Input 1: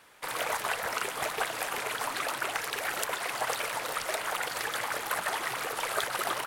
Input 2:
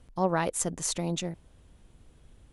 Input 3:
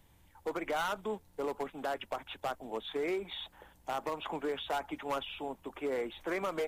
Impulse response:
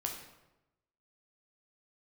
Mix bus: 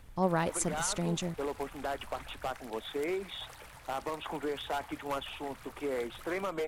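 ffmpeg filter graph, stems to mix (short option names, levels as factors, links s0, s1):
-filter_complex "[0:a]asubboost=boost=8.5:cutoff=140,acompressor=mode=upward:threshold=0.01:ratio=2.5,volume=0.112[s0];[1:a]volume=0.708,asplit=2[s1][s2];[2:a]volume=0.944[s3];[s2]apad=whole_len=294388[s4];[s3][s4]sidechaincompress=threshold=0.0178:ratio=8:attack=16:release=222[s5];[s0][s1][s5]amix=inputs=3:normalize=0,lowshelf=f=130:g=6"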